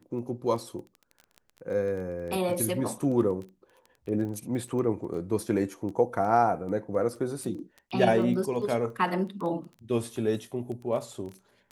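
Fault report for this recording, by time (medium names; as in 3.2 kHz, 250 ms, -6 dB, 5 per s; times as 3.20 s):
crackle 11 per s -35 dBFS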